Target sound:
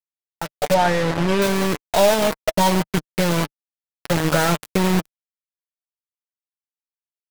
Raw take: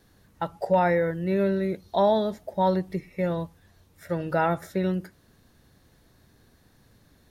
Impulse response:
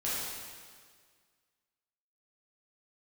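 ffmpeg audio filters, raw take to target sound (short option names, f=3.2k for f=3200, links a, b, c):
-filter_complex "[0:a]asplit=5[a][b][c][d][e];[b]adelay=99,afreqshift=33,volume=-22dB[f];[c]adelay=198,afreqshift=66,volume=-26.6dB[g];[d]adelay=297,afreqshift=99,volume=-31.2dB[h];[e]adelay=396,afreqshift=132,volume=-35.7dB[i];[a][f][g][h][i]amix=inputs=5:normalize=0,acompressor=threshold=-34dB:ratio=2.5,acrusher=bits=5:mix=0:aa=0.000001,flanger=delay=6.2:depth=1:regen=40:speed=0.39:shape=triangular,aeval=exprs='0.0596*(cos(1*acos(clip(val(0)/0.0596,-1,1)))-cos(1*PI/2))+0.000944*(cos(5*acos(clip(val(0)/0.0596,-1,1)))-cos(5*PI/2))+0.00531*(cos(6*acos(clip(val(0)/0.0596,-1,1)))-cos(6*PI/2))+0.00266*(cos(7*acos(clip(val(0)/0.0596,-1,1)))-cos(7*PI/2))':c=same,asettb=1/sr,asplit=3[j][k][l];[j]atrim=end=0.744[m];[k]atrim=start=0.74:end=1.42,asetpts=PTS-STARTPTS,afade=t=in:d=0.004:c=qsin,afade=t=out:st=0.676:d=0.004:c=qsin,aemphasis=mode=reproduction:type=50fm[n];[l]atrim=start=1.416[o];[m][n]acrossfade=d=0.004:c1=hsin:c2=qsin[p];[p][o]acrossfade=d=0.004:c1=qsin:c2=hsin,anlmdn=0.0000158,dynaudnorm=f=160:g=7:m=14dB,volume=4.5dB"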